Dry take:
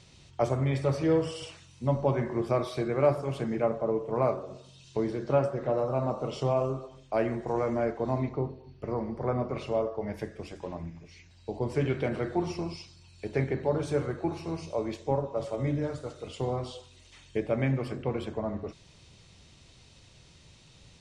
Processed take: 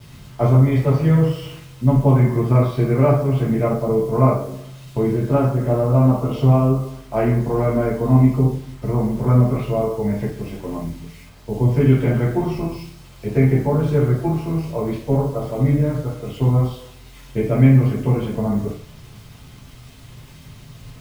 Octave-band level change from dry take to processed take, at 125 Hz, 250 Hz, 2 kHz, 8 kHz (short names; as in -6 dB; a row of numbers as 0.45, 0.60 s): +17.0 dB, +13.5 dB, +6.5 dB, n/a